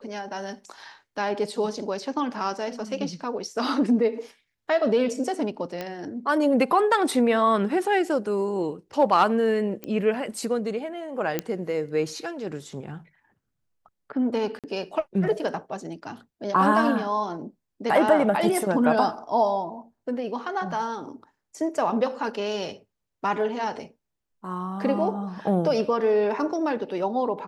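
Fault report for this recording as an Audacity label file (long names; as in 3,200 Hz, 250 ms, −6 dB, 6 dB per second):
5.810000	5.810000	click −17 dBFS
9.840000	9.840000	click −18 dBFS
11.390000	11.390000	click −10 dBFS
14.590000	14.640000	drop-out 47 ms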